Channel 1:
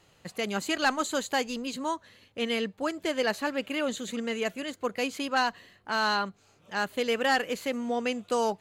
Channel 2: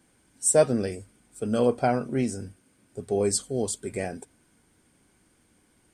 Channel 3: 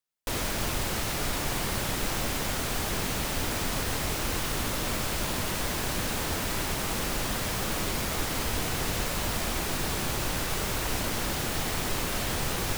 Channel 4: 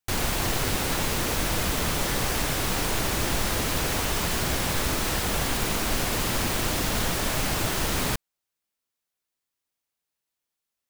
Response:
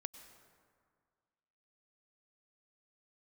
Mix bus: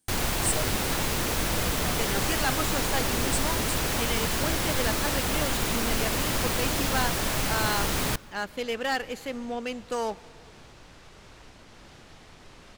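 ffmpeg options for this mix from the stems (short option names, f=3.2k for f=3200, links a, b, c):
-filter_complex "[0:a]aeval=exprs='0.168*(cos(1*acos(clip(val(0)/0.168,-1,1)))-cos(1*PI/2))+0.0188*(cos(6*acos(clip(val(0)/0.168,-1,1)))-cos(6*PI/2))+0.0168*(cos(8*acos(clip(val(0)/0.168,-1,1)))-cos(8*PI/2))':c=same,adelay=1600,volume=-5.5dB,asplit=2[a][b];[b]volume=-6.5dB[c];[1:a]aexciter=amount=3.2:drive=6:freq=3.3k,volume=-17.5dB[d];[2:a]lowpass=5.9k,alimiter=limit=-21.5dB:level=0:latency=1:release=461,adelay=550,volume=-17.5dB[e];[3:a]volume=-2.5dB,asplit=2[f][g];[g]volume=-11dB[h];[4:a]atrim=start_sample=2205[i];[c][h]amix=inputs=2:normalize=0[j];[j][i]afir=irnorm=-1:irlink=0[k];[a][d][e][f][k]amix=inputs=5:normalize=0"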